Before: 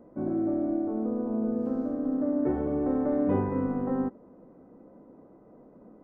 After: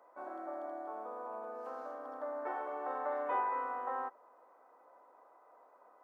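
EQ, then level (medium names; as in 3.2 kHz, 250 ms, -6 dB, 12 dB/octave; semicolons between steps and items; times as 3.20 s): ladder high-pass 760 Hz, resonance 35%; +9.0 dB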